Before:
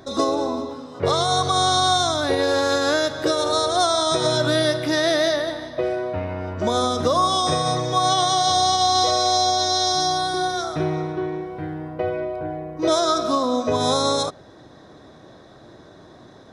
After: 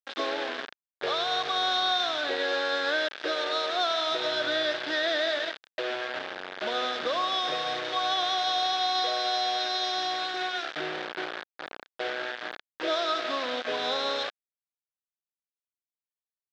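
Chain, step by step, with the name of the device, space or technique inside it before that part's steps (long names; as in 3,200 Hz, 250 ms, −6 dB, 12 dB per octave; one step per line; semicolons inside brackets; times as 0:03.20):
hand-held game console (bit reduction 4 bits; loudspeaker in its box 430–4,400 Hz, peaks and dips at 1,000 Hz −5 dB, 1,600 Hz +7 dB, 3,500 Hz +5 dB)
level −8 dB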